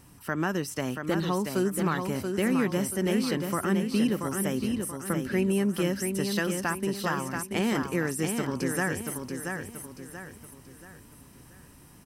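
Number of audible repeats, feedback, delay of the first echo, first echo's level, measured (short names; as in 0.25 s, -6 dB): 4, 39%, 0.682 s, -5.5 dB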